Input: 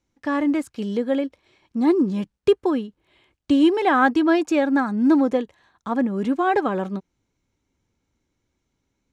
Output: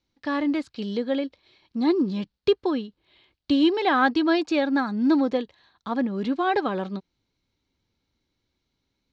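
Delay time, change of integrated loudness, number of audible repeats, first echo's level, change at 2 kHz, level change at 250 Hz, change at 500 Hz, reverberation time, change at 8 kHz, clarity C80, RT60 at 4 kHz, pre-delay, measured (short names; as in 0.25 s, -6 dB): none, -3.0 dB, none, none, -2.0 dB, -3.5 dB, -3.5 dB, none, n/a, none, none, none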